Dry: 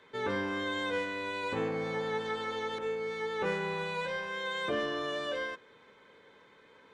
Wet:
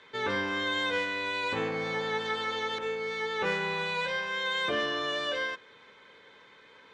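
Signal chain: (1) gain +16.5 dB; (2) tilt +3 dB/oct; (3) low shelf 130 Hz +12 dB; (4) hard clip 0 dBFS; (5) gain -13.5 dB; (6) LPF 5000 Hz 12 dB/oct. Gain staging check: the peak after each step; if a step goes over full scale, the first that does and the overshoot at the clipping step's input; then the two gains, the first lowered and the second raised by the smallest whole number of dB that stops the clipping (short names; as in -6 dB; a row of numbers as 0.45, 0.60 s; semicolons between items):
-4.5, -5.0, -5.5, -5.5, -19.0, -19.0 dBFS; no overload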